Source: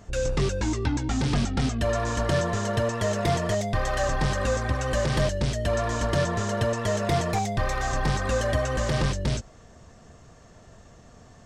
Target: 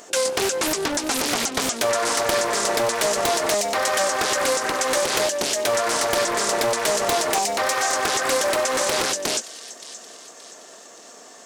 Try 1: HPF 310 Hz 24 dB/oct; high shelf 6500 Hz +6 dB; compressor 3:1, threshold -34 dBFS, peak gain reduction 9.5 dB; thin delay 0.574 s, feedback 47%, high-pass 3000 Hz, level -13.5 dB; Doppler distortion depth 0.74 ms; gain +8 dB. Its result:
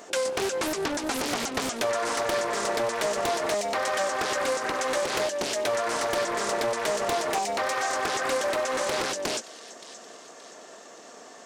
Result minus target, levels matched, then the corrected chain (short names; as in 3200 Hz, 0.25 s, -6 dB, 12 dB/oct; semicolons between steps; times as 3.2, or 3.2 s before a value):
compressor: peak gain reduction +5 dB; 8000 Hz band -4.0 dB
HPF 310 Hz 24 dB/oct; high shelf 6500 Hz +18 dB; compressor 3:1, threshold -26 dBFS, peak gain reduction 4.5 dB; thin delay 0.574 s, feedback 47%, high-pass 3000 Hz, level -13.5 dB; Doppler distortion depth 0.74 ms; gain +8 dB